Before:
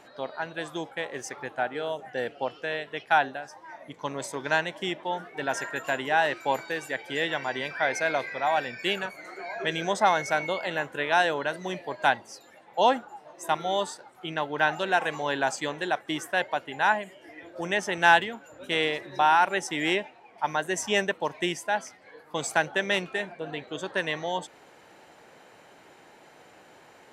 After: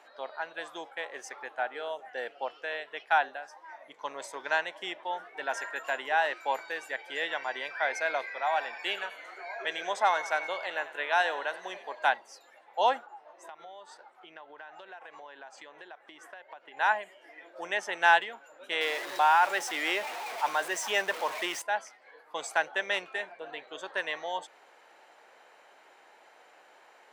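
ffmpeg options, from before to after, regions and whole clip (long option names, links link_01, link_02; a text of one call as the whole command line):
ffmpeg -i in.wav -filter_complex "[0:a]asettb=1/sr,asplit=3[link_01][link_02][link_03];[link_01]atrim=end=8.344[link_04];[link_02]atrim=start=8.34:end=11.99,asetpts=PTS-STARTPTS,afade=type=in:duration=0.004:curve=qsin,afade=type=out:start_time=3.646:duration=0.004:curve=qsin,highpass=frequency=240:poles=1,asplit=6[link_05][link_06][link_07][link_08][link_09][link_10];[link_06]adelay=92,afreqshift=32,volume=-15.5dB[link_11];[link_07]adelay=184,afreqshift=64,volume=-20.5dB[link_12];[link_08]adelay=276,afreqshift=96,volume=-25.6dB[link_13];[link_09]adelay=368,afreqshift=128,volume=-30.6dB[link_14];[link_10]adelay=460,afreqshift=160,volume=-35.6dB[link_15];[link_05][link_11][link_12][link_13][link_14][link_15]amix=inputs=6:normalize=0,atrim=end_sample=160965[link_16];[link_03]atrim=start=11.986[link_17];[link_04][link_16]acrossfade=duration=0.004:curve1=hsin:curve2=qsin[link_18];[link_18][link_17]acrossfade=duration=0.004:curve1=qsin:curve2=hsin,asettb=1/sr,asplit=3[link_19][link_20][link_21];[link_19]atrim=end=13.064[link_22];[link_20]atrim=start=13.06:end=16.77,asetpts=PTS-STARTPTS,afade=type=in:duration=0.004:curve=qsin,afade=type=out:start_time=3.706:duration=0.004:curve=qsin,aemphasis=mode=reproduction:type=50kf,acompressor=threshold=-38dB:ratio=16:attack=3.2:release=140:knee=1:detection=peak[link_23];[link_21]atrim=start=16.766[link_24];[link_22][link_23]acrossfade=duration=0.004:curve1=hsin:curve2=qsin[link_25];[link_25][link_24]acrossfade=duration=0.004:curve1=qsin:curve2=hsin,asettb=1/sr,asplit=3[link_26][link_27][link_28];[link_26]atrim=end=18.814[link_29];[link_27]atrim=start=18.81:end=21.62,asetpts=PTS-STARTPTS,afade=type=in:duration=0.004:curve=qsin,afade=type=out:start_time=2.806:duration=0.004:curve=qsin,aeval=exprs='val(0)+0.5*0.0376*sgn(val(0))':channel_layout=same,lowshelf=frequency=130:gain=-8[link_30];[link_28]atrim=start=21.616[link_31];[link_29][link_30]acrossfade=duration=0.004:curve1=hsin:curve2=qsin[link_32];[link_32][link_31]acrossfade=duration=0.004:curve1=qsin:curve2=hsin,highpass=610,highshelf=frequency=3900:gain=-7,volume=-1.5dB" out.wav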